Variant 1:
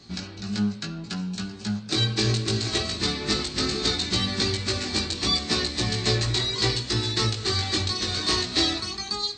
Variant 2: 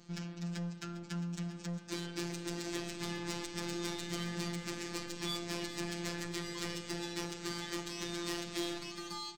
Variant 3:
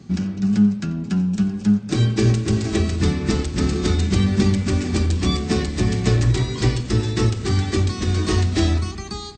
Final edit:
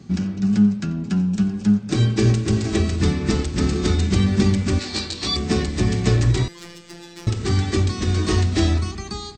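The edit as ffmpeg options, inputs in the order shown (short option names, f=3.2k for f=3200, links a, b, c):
-filter_complex "[2:a]asplit=3[a][b][c];[a]atrim=end=4.792[d];[0:a]atrim=start=4.788:end=5.362[e];[b]atrim=start=5.358:end=6.482[f];[1:a]atrim=start=6.478:end=7.272[g];[c]atrim=start=7.268[h];[d][e]acrossfade=d=0.004:c1=hsin:c2=hsin[i];[i][f]acrossfade=d=0.004:c1=hsin:c2=hsin[j];[j][g]acrossfade=d=0.004:c1=hsin:c2=hsin[k];[k][h]acrossfade=d=0.004:c1=hsin:c2=hsin"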